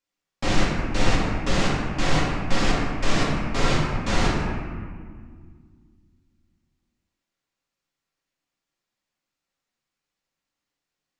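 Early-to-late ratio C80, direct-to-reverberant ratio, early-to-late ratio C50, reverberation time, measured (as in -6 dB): 2.0 dB, -6.0 dB, 0.0 dB, 1.9 s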